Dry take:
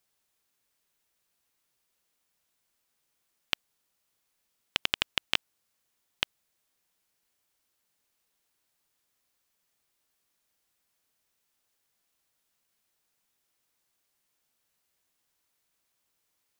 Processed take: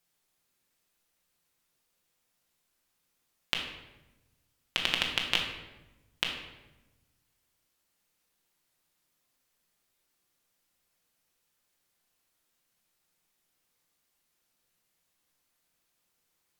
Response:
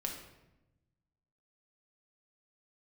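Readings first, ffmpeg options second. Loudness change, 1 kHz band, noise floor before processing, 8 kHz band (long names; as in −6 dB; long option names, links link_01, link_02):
+0.5 dB, +1.5 dB, −78 dBFS, +0.5 dB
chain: -filter_complex "[1:a]atrim=start_sample=2205,asetrate=39249,aresample=44100[link_01];[0:a][link_01]afir=irnorm=-1:irlink=0"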